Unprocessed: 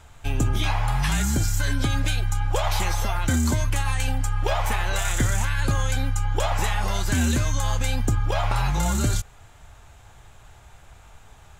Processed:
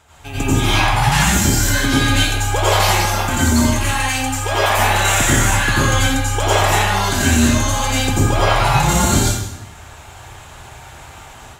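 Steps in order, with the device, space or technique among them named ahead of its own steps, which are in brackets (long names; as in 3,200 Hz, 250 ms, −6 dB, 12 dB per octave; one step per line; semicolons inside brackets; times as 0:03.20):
far laptop microphone (convolution reverb RT60 0.85 s, pre-delay 81 ms, DRR −8 dB; high-pass filter 190 Hz 6 dB per octave; automatic gain control gain up to 7 dB)
0:04.08–0:04.78: low-shelf EQ 370 Hz −6 dB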